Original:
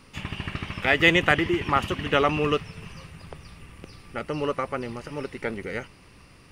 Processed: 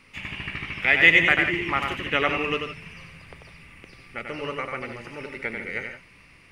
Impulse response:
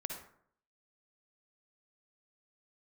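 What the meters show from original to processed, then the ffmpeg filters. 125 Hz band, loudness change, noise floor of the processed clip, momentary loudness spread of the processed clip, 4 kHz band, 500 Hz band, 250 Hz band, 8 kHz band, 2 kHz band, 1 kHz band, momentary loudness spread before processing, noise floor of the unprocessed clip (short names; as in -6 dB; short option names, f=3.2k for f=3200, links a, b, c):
-5.5 dB, +2.5 dB, -53 dBFS, 22 LU, +0.5 dB, -4.0 dB, -4.5 dB, n/a, +5.0 dB, -2.5 dB, 24 LU, -52 dBFS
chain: -filter_complex "[0:a]equalizer=f=2.2k:w=1.9:g=12.5,bandreject=f=50:t=h:w=6,bandreject=f=100:t=h:w=6,bandreject=f=150:t=h:w=6,asplit=2[a][b];[1:a]atrim=start_sample=2205,atrim=end_sample=3528,adelay=92[c];[b][c]afir=irnorm=-1:irlink=0,volume=-2.5dB[d];[a][d]amix=inputs=2:normalize=0,volume=-6dB"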